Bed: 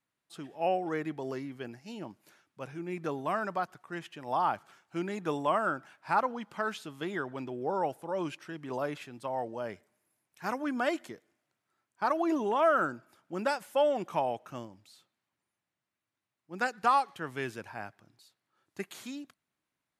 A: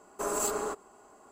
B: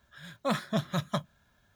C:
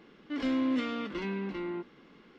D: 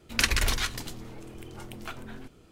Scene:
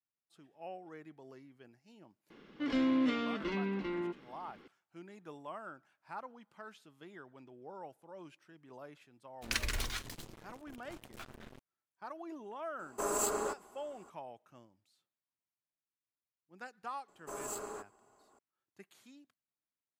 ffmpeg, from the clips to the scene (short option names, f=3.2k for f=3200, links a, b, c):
-filter_complex "[1:a]asplit=2[a][b];[0:a]volume=-17dB[c];[4:a]acrusher=bits=5:mix=0:aa=0.5[d];[3:a]atrim=end=2.38,asetpts=PTS-STARTPTS,volume=-1dB,afade=t=in:d=0.004:c=hsin,afade=t=out:st=2.376:d=0.004:c=hsin,adelay=2300[e];[d]atrim=end=2.51,asetpts=PTS-STARTPTS,volume=-10.5dB,afade=t=in:d=0.004:c=hsin,afade=t=out:st=2.506:d=0.004:c=hsin,adelay=9320[f];[a]atrim=end=1.31,asetpts=PTS-STARTPTS,volume=-2.5dB,afade=t=in:d=0.004:c=hsin,afade=t=out:st=1.306:d=0.004:c=hsin,adelay=12790[g];[b]atrim=end=1.31,asetpts=PTS-STARTPTS,volume=-11dB,afade=t=in:d=0.004:c=hsin,afade=t=out:st=1.306:d=0.004:c=hsin,adelay=17080[h];[c][e][f][g][h]amix=inputs=5:normalize=0"